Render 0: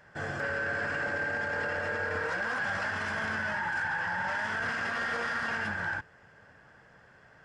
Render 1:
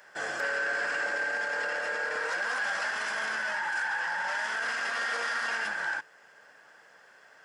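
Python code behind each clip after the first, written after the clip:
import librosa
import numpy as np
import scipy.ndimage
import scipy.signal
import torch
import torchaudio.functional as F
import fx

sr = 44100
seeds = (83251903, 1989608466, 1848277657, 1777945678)

y = scipy.signal.sosfilt(scipy.signal.butter(2, 420.0, 'highpass', fs=sr, output='sos'), x)
y = fx.high_shelf(y, sr, hz=4200.0, db=11.5)
y = fx.rider(y, sr, range_db=3, speed_s=2.0)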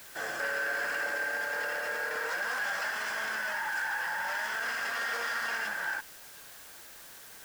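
y = fx.quant_dither(x, sr, seeds[0], bits=8, dither='triangular')
y = F.gain(torch.from_numpy(y), -2.0).numpy()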